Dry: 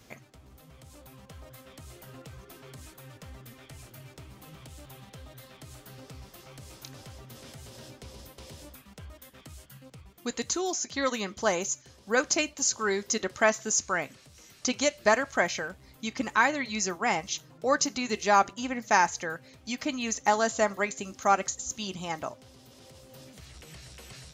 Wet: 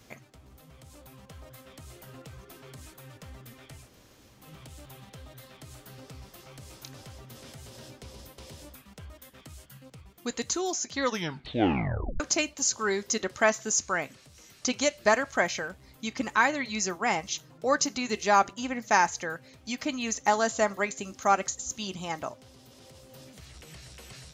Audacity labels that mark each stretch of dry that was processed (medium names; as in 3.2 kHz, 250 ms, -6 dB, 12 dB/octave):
3.860000	4.390000	room tone, crossfade 0.24 s
11.020000	11.020000	tape stop 1.18 s